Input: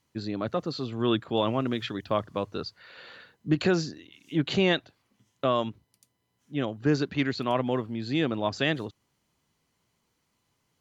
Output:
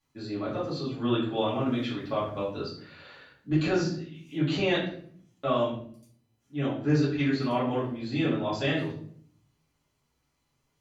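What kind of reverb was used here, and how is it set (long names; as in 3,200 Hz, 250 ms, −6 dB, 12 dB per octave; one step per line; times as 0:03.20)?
rectangular room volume 71 cubic metres, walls mixed, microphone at 2.4 metres
level −12 dB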